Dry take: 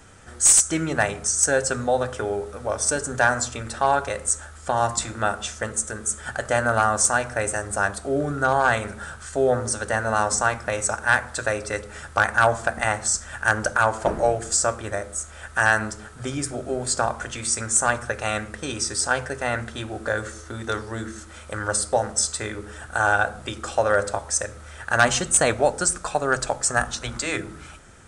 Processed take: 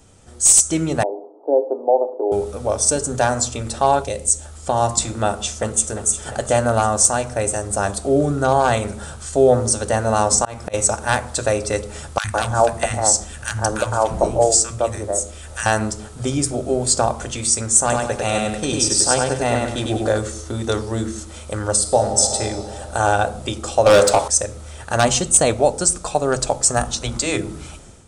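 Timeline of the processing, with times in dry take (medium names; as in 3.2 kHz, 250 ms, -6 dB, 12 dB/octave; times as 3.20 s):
1.03–2.32 s: Chebyshev band-pass 290–920 Hz, order 4
4.02–4.45 s: peaking EQ 1.2 kHz -11.5 dB 0.96 oct
5.26–5.94 s: echo throw 350 ms, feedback 70%, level -12.5 dB
10.30–10.74 s: slow attack 227 ms
12.18–15.66 s: three bands offset in time highs, lows, mids 60/160 ms, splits 200/1400 Hz
17.80–20.18 s: feedback delay 99 ms, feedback 37%, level -3 dB
21.79–22.36 s: reverb throw, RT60 2.9 s, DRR 4.5 dB
23.86–24.28 s: overdrive pedal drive 21 dB, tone 5.7 kHz, clips at -7 dBFS
whole clip: peaking EQ 1.6 kHz -13 dB 1 oct; level rider gain up to 9 dB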